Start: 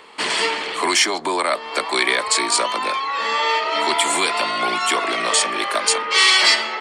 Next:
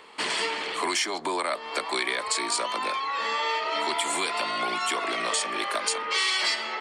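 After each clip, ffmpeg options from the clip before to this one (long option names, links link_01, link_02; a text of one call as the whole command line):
ffmpeg -i in.wav -af "acompressor=threshold=-20dB:ratio=2.5,volume=-5dB" out.wav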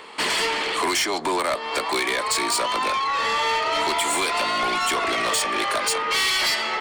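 ffmpeg -i in.wav -af "asoftclip=type=tanh:threshold=-25.5dB,volume=8dB" out.wav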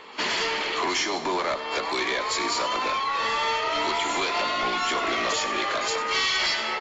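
ffmpeg -i in.wav -af "aecho=1:1:100|200|300|400|500:0.2|0.106|0.056|0.0297|0.0157,volume=-3.5dB" -ar 16000 -c:a aac -b:a 24k out.aac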